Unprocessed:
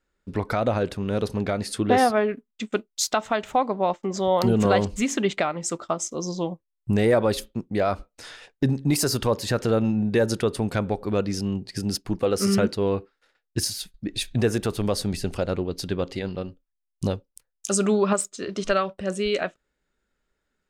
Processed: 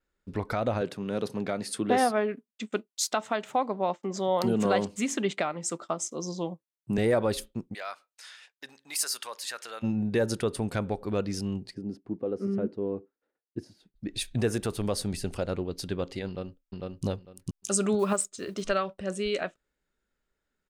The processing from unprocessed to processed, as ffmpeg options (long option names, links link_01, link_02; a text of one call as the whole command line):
ffmpeg -i in.wav -filter_complex "[0:a]asettb=1/sr,asplit=3[link_01][link_02][link_03];[link_01]atrim=end=0.814[link_04];[link_02]atrim=start=0.81:end=6.98,asetpts=PTS-STARTPTS,afade=type=in:duration=0.004:curve=qsin,afade=type=out:start_time=6.166:duration=0.004:curve=qsin,highpass=frequency=130:width=0.5412,highpass=frequency=130:width=1.3066[link_05];[link_03]atrim=start=6.976[link_06];[link_04][link_05]acrossfade=duration=0.004:curve1=hsin:curve2=qsin[link_07];[link_07][link_06]acrossfade=duration=0.004:curve1=qsin:curve2=hsin,asplit=3[link_08][link_09][link_10];[link_08]afade=type=out:start_time=7.73:duration=0.02[link_11];[link_09]highpass=1300,afade=type=in:start_time=7.73:duration=0.02,afade=type=out:start_time=9.82:duration=0.02[link_12];[link_10]afade=type=in:start_time=9.82:duration=0.02[link_13];[link_11][link_12][link_13]amix=inputs=3:normalize=0,asplit=3[link_14][link_15][link_16];[link_14]afade=type=out:start_time=11.73:duration=0.02[link_17];[link_15]bandpass=frequency=300:width_type=q:width=1.2,afade=type=in:start_time=11.73:duration=0.02,afade=type=out:start_time=13.95:duration=0.02[link_18];[link_16]afade=type=in:start_time=13.95:duration=0.02[link_19];[link_17][link_18][link_19]amix=inputs=3:normalize=0,asplit=2[link_20][link_21];[link_21]afade=type=in:start_time=16.27:duration=0.01,afade=type=out:start_time=17.05:duration=0.01,aecho=0:1:450|900|1350:0.891251|0.17825|0.03565[link_22];[link_20][link_22]amix=inputs=2:normalize=0,asettb=1/sr,asplit=3[link_23][link_24][link_25];[link_23]atrim=end=17.994[link_26];[link_24]atrim=start=17.99:end=18.65,asetpts=PTS-STARTPTS,afade=type=in:duration=0.004:curve=qsin,afade=type=out:start_time=0.656:duration=0.004:curve=qsin,acrusher=bits=8:mode=log:mix=0:aa=0.000001[link_27];[link_25]atrim=start=18.646[link_28];[link_26][link_27]acrossfade=duration=0.004:curve1=hsin:curve2=qsin[link_29];[link_29][link_28]acrossfade=duration=0.004:curve1=qsin:curve2=hsin,adynamicequalizer=threshold=0.00501:dfrequency=9100:dqfactor=2.2:tfrequency=9100:tqfactor=2.2:attack=5:release=100:ratio=0.375:range=2.5:mode=boostabove:tftype=bell,volume=-5dB" out.wav